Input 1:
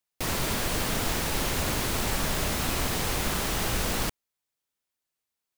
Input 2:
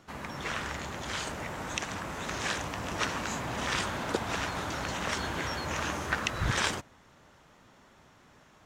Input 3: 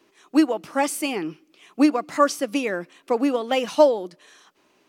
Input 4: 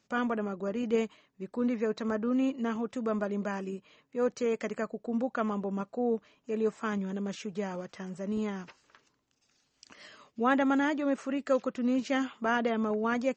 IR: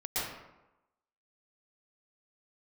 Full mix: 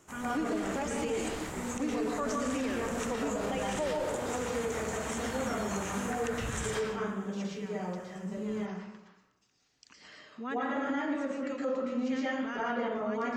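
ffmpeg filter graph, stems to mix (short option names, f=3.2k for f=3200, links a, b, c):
-filter_complex "[0:a]lowpass=9.6k,volume=-10.5dB,asplit=2[a][b];[b]volume=-22.5dB[c];[1:a]volume=-8dB,asplit=2[d][e];[e]volume=-5.5dB[f];[2:a]lowpass=f=5.5k:w=0.5412,lowpass=f=5.5k:w=1.3066,volume=-6dB,asplit=2[g][h];[h]volume=-14dB[i];[3:a]volume=-3.5dB,asplit=2[j][k];[k]volume=-4.5dB[l];[a][j]amix=inputs=2:normalize=0,acrossover=split=630[m][n];[m]aeval=exprs='val(0)*(1-0.7/2+0.7/2*cos(2*PI*4.5*n/s))':c=same[o];[n]aeval=exprs='val(0)*(1-0.7/2-0.7/2*cos(2*PI*4.5*n/s))':c=same[p];[o][p]amix=inputs=2:normalize=0,acompressor=threshold=-51dB:ratio=2,volume=0dB[q];[d][g]amix=inputs=2:normalize=0,highshelf=f=5.6k:t=q:w=3:g=10,acompressor=threshold=-45dB:ratio=1.5,volume=0dB[r];[4:a]atrim=start_sample=2205[s];[c][f][i][l]amix=inputs=4:normalize=0[t];[t][s]afir=irnorm=-1:irlink=0[u];[q][r][u]amix=inputs=3:normalize=0,alimiter=limit=-24dB:level=0:latency=1:release=50"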